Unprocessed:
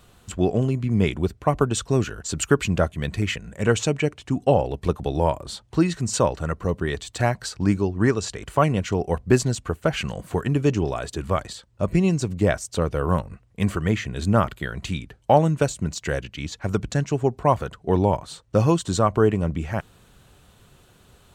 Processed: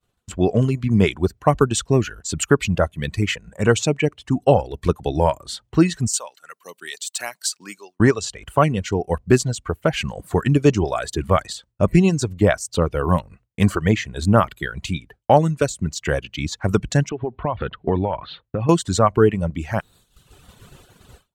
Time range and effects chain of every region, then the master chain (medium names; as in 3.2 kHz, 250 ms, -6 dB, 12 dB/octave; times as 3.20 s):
6.08–8.00 s: high-pass 150 Hz 24 dB/octave + differentiator
17.09–18.69 s: steep low-pass 3.8 kHz 48 dB/octave + compression 8:1, threshold -24 dBFS
whole clip: level rider; reverb removal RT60 1.1 s; expander -42 dBFS; trim -1 dB